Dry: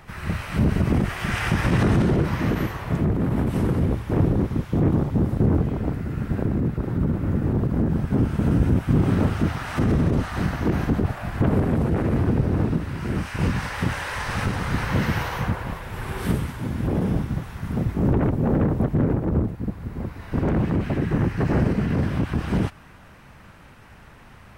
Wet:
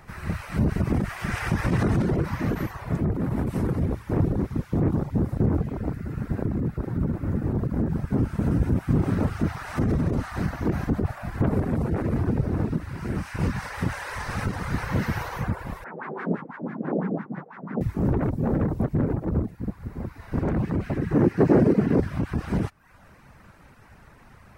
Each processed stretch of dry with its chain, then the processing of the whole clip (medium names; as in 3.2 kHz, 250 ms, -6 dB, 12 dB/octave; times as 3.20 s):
15.84–17.81 s: steep high-pass 160 Hz 48 dB/octave + LFO low-pass sine 6 Hz 490–1900 Hz
21.15–22.00 s: high-pass 100 Hz + peaking EQ 380 Hz +11.5 dB 1.9 oct
whole clip: reverb removal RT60 0.58 s; peaking EQ 3.1 kHz -6 dB 0.59 oct; trim -2 dB